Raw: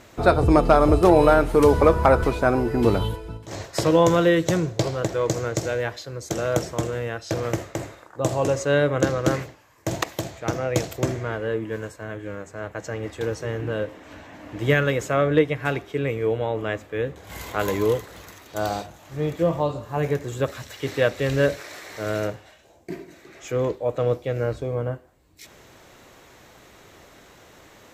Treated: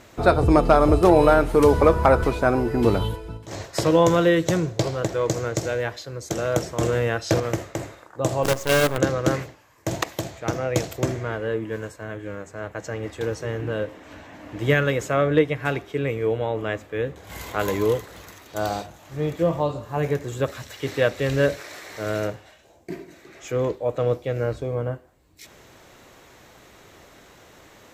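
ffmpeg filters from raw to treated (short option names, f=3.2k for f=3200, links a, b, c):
-filter_complex "[0:a]asettb=1/sr,asplit=3[a][b][c];[a]atrim=end=6.814[d];[b]atrim=start=6.81:end=7.4,asetpts=PTS-STARTPTS,afade=t=in:d=0.004:c=qsin,afade=t=out:st=0.586:d=0.004:c=qsin,acontrast=51[e];[c]atrim=start=7.396[f];[d][e]acrossfade=d=0.004:c1=hsin:c2=qsin[g];[g][f]acrossfade=d=0.004:c1=qsin:c2=hsin,asettb=1/sr,asplit=3[h][i][j];[h]atrim=end=8.434[k];[i]atrim=start=8.43:end=8.98,asetpts=PTS-STARTPTS,afade=t=in:d=0.004:c=qsin,afade=t=out:st=0.546:d=0.004:c=qsin,acrusher=bits=4:dc=4:mix=0:aa=0.000001[l];[j]atrim=start=8.976[m];[k][l]acrossfade=d=0.004:c1=hsin:c2=qsin[n];[n][m]acrossfade=d=0.004:c1=qsin:c2=hsin"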